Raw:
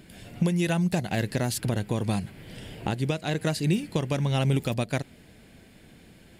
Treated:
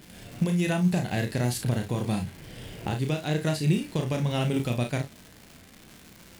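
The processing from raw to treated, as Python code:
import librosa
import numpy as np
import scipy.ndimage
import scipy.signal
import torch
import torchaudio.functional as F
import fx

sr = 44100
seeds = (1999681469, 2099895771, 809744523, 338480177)

y = fx.dmg_crackle(x, sr, seeds[0], per_s=290.0, level_db=-35.0)
y = fx.room_early_taps(y, sr, ms=(33, 55), db=(-6.0, -13.0))
y = fx.hpss(y, sr, part='percussive', gain_db=-4)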